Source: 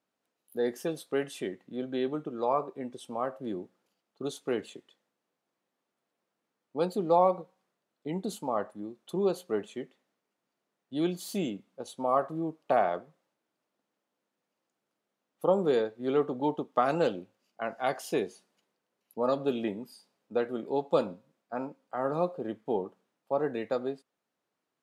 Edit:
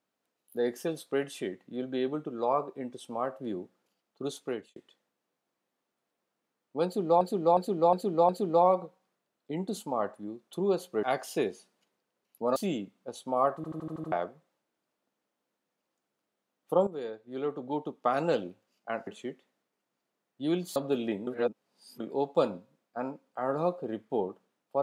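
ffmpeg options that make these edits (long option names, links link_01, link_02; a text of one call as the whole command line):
ffmpeg -i in.wav -filter_complex "[0:a]asplit=20[link_01][link_02][link_03][link_04][link_05][link_06][link_07][link_08][link_09][link_10][link_11][link_12][link_13][link_14][link_15][link_16][link_17][link_18][link_19][link_20];[link_01]atrim=end=4.76,asetpts=PTS-STARTPTS,afade=type=out:start_time=4.39:duration=0.37[link_21];[link_02]atrim=start=4.76:end=7.212,asetpts=PTS-STARTPTS,afade=type=in:duration=0.004:curve=hsin[link_22];[link_03]atrim=start=6.848:end=7.212[link_23];[link_04]atrim=start=6.848:end=7.212[link_24];[link_05]atrim=start=6.848:end=7.212[link_25];[link_06]atrim=start=6.848:end=9.592[link_26];[link_07]atrim=start=17.788:end=19.322[link_27];[link_08]atrim=start=11.278:end=12.362[link_28];[link_09]atrim=start=12.278:end=12.362[link_29];[link_10]atrim=start=12.278:end=12.362[link_30];[link_11]atrim=start=12.278:end=12.362[link_31];[link_12]atrim=start=12.278:end=12.362[link_32];[link_13]atrim=start=12.278:end=12.362[link_33];[link_14]atrim=start=12.278:end=12.362[link_34];[link_15]atrim=start=12.838:end=15.59,asetpts=PTS-STARTPTS,afade=type=out:start_time=2.748:duration=0.004:curve=hsin:silence=0.199526[link_35];[link_16]atrim=start=15.59:end=17.792,asetpts=PTS-STARTPTS,afade=type=in:duration=1.61:silence=0.199526[link_36];[link_17]atrim=start=9.588:end=11.282[link_37];[link_18]atrim=start=19.318:end=19.832[link_38];[link_19]atrim=start=19.828:end=20.562,asetpts=PTS-STARTPTS,areverse[link_39];[link_20]atrim=start=20.558[link_40];[link_21][link_22]concat=n=2:v=0:a=1[link_41];[link_41][link_23]acrossfade=duration=0.004:curve1=hsin:curve2=hsin[link_42];[link_42][link_24]acrossfade=duration=0.004:curve1=hsin:curve2=hsin[link_43];[link_43][link_25]acrossfade=duration=0.004:curve1=hsin:curve2=hsin[link_44];[link_44][link_26]acrossfade=duration=0.004:curve1=hsin:curve2=hsin[link_45];[link_45][link_27]acrossfade=duration=0.004:curve1=hsin:curve2=hsin[link_46];[link_46][link_28]acrossfade=duration=0.004:curve1=hsin:curve2=hsin[link_47];[link_47][link_29]acrossfade=duration=0.004:curve1=hsin:curve2=hsin[link_48];[link_48][link_30]acrossfade=duration=0.004:curve1=hsin:curve2=hsin[link_49];[link_49][link_31]acrossfade=duration=0.004:curve1=hsin:curve2=hsin[link_50];[link_50][link_32]acrossfade=duration=0.004:curve1=hsin:curve2=hsin[link_51];[link_51][link_33]acrossfade=duration=0.004:curve1=hsin:curve2=hsin[link_52];[link_52][link_34]acrossfade=duration=0.004:curve1=hsin:curve2=hsin[link_53];[link_35][link_36]concat=n=2:v=0:a=1[link_54];[link_53][link_54]acrossfade=duration=0.004:curve1=hsin:curve2=hsin[link_55];[link_55][link_37]acrossfade=duration=0.004:curve1=hsin:curve2=hsin[link_56];[link_56][link_38]acrossfade=duration=0.004:curve1=hsin:curve2=hsin[link_57];[link_57][link_39]acrossfade=duration=0.004:curve1=hsin:curve2=hsin[link_58];[link_58][link_40]acrossfade=duration=0.004:curve1=hsin:curve2=hsin" out.wav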